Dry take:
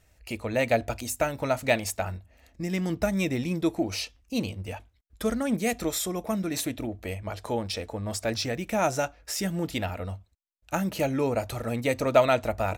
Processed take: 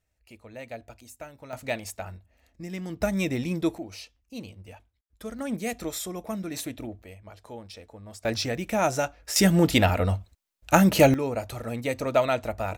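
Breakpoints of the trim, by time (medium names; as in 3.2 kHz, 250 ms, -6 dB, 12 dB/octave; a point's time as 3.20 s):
-15.5 dB
from 1.53 s -6.5 dB
from 3.01 s 0 dB
from 3.78 s -10 dB
from 5.39 s -4 dB
from 7.02 s -12 dB
from 8.25 s +1 dB
from 9.36 s +10 dB
from 11.14 s -2.5 dB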